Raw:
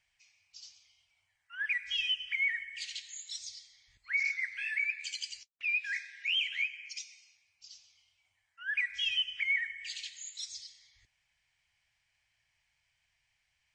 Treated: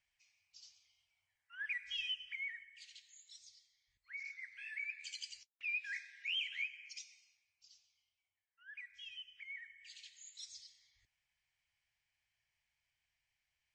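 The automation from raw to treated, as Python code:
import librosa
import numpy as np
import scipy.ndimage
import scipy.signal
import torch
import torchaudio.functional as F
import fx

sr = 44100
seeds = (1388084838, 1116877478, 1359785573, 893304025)

y = fx.gain(x, sr, db=fx.line((2.08, -8.0), (2.75, -16.0), (4.25, -16.0), (5.16, -7.5), (7.1, -7.5), (8.66, -19.0), (9.46, -19.0), (10.47, -9.0)))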